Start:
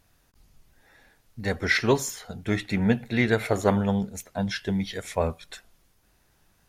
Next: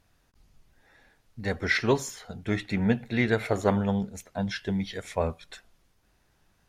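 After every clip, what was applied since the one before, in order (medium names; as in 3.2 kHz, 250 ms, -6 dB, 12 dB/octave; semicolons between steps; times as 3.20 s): treble shelf 9.5 kHz -10 dB; trim -2 dB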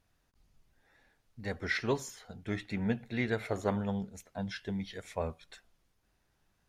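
wow and flutter 22 cents; trim -7.5 dB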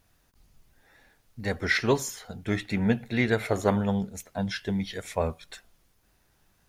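treble shelf 9.7 kHz +9 dB; trim +7.5 dB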